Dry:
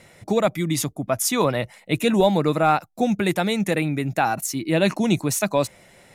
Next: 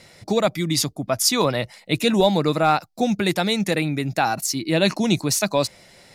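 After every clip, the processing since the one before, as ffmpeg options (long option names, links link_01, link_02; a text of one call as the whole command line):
ffmpeg -i in.wav -af "equalizer=frequency=4700:width_type=o:width=0.65:gain=11.5" out.wav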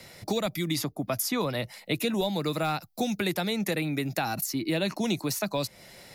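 ffmpeg -i in.wav -filter_complex "[0:a]acrossover=split=130|260|2200[link_01][link_02][link_03][link_04];[link_01]acompressor=threshold=-44dB:ratio=4[link_05];[link_02]acompressor=threshold=-36dB:ratio=4[link_06];[link_03]acompressor=threshold=-30dB:ratio=4[link_07];[link_04]acompressor=threshold=-35dB:ratio=4[link_08];[link_05][link_06][link_07][link_08]amix=inputs=4:normalize=0,aexciter=amount=3.5:drive=3.3:freq=11000" out.wav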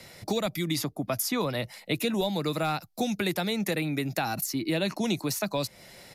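ffmpeg -i in.wav -af "aresample=32000,aresample=44100" out.wav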